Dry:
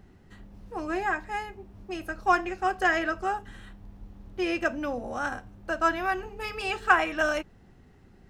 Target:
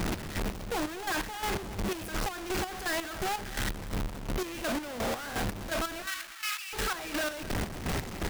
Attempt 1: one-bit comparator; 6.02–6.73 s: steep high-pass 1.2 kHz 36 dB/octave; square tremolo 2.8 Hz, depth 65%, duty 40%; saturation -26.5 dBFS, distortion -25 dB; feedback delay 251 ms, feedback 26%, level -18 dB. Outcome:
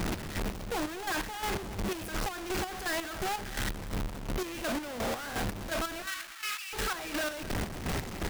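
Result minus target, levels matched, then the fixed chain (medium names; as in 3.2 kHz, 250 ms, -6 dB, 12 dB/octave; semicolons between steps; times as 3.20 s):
saturation: distortion +17 dB
one-bit comparator; 6.02–6.73 s: steep high-pass 1.2 kHz 36 dB/octave; square tremolo 2.8 Hz, depth 65%, duty 40%; saturation -16.5 dBFS, distortion -43 dB; feedback delay 251 ms, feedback 26%, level -18 dB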